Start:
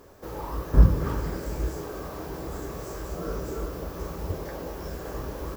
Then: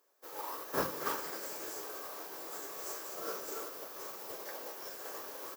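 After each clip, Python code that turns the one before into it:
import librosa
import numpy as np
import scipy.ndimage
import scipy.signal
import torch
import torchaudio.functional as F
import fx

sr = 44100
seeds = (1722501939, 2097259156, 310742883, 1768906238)

y = scipy.signal.sosfilt(scipy.signal.butter(2, 410.0, 'highpass', fs=sr, output='sos'), x)
y = fx.tilt_eq(y, sr, slope=2.5)
y = fx.upward_expand(y, sr, threshold_db=-48.0, expansion=2.5)
y = F.gain(torch.from_numpy(y), 3.5).numpy()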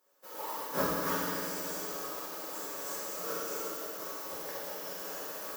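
y = fx.rev_fdn(x, sr, rt60_s=1.9, lf_ratio=1.4, hf_ratio=1.0, size_ms=32.0, drr_db=-6.5)
y = F.gain(torch.from_numpy(y), -3.5).numpy()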